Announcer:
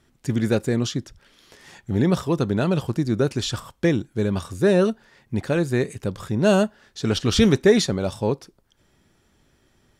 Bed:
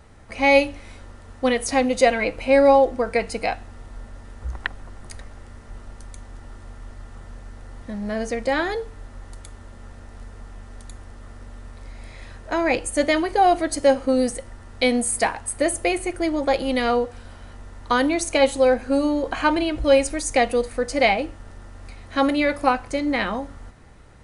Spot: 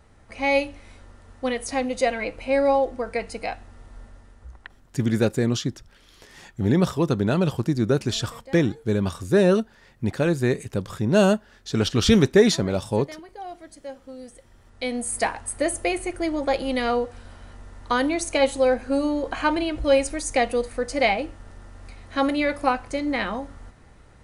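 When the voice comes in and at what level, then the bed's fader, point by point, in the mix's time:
4.70 s, 0.0 dB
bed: 0:04.04 −5.5 dB
0:04.98 −20.5 dB
0:14.19 −20.5 dB
0:15.22 −2.5 dB

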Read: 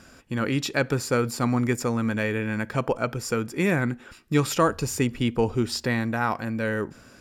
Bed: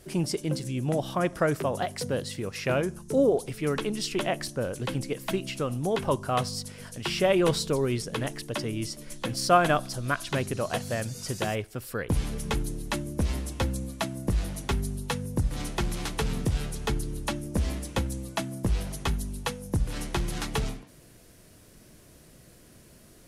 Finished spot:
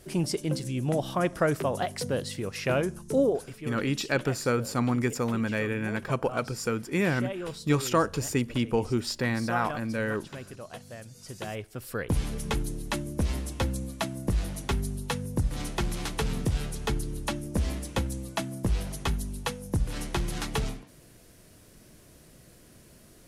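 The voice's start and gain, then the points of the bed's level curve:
3.35 s, −3.0 dB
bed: 0:03.15 0 dB
0:03.81 −13 dB
0:11.06 −13 dB
0:11.93 −0.5 dB

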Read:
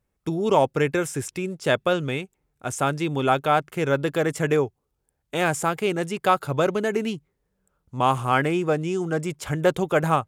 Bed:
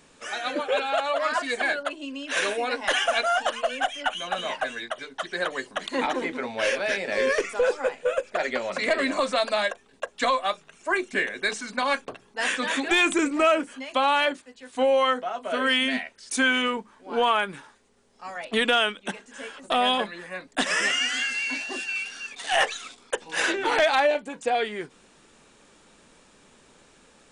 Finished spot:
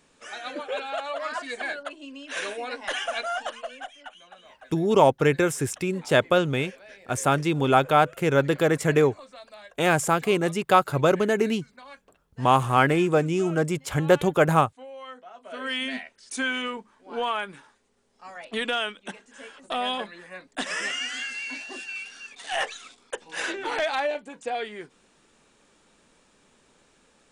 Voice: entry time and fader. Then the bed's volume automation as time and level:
4.45 s, +1.5 dB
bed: 0:03.42 −6 dB
0:04.39 −21.5 dB
0:14.93 −21.5 dB
0:15.82 −5.5 dB

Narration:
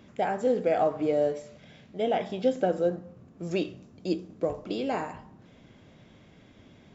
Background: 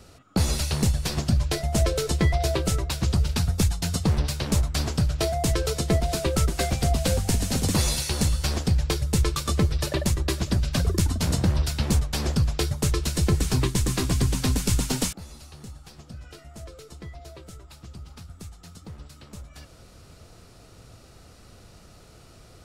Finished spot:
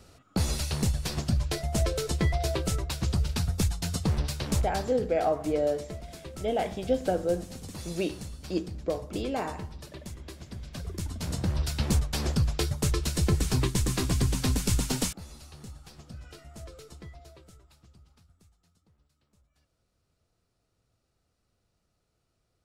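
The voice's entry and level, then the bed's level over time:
4.45 s, −1.5 dB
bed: 0:04.62 −4.5 dB
0:05.04 −18 dB
0:10.51 −18 dB
0:11.77 −3 dB
0:16.85 −3 dB
0:18.96 −26.5 dB

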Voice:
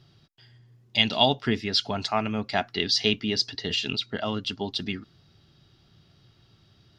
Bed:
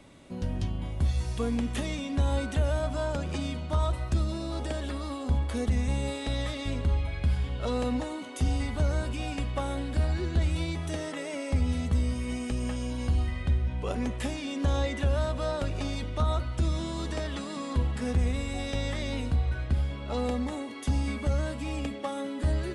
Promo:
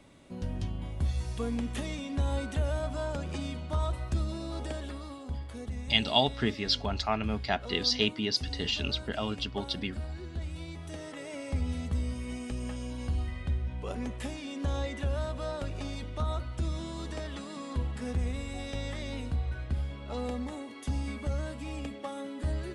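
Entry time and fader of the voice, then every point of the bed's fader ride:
4.95 s, −4.0 dB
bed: 0:04.69 −3.5 dB
0:05.41 −11 dB
0:10.54 −11 dB
0:11.36 −5 dB

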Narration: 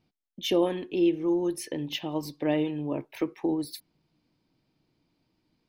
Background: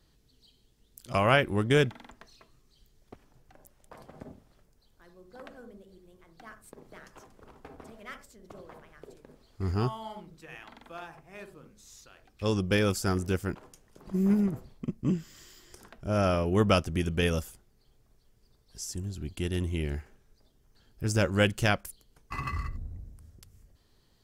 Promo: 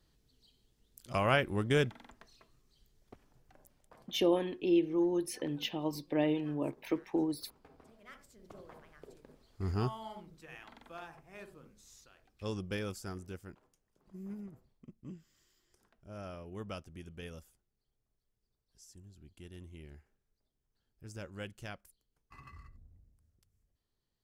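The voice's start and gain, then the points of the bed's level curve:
3.70 s, −4.0 dB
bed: 0:03.59 −5.5 dB
0:04.13 −12 dB
0:07.99 −12 dB
0:08.42 −4.5 dB
0:11.70 −4.5 dB
0:13.79 −19.5 dB

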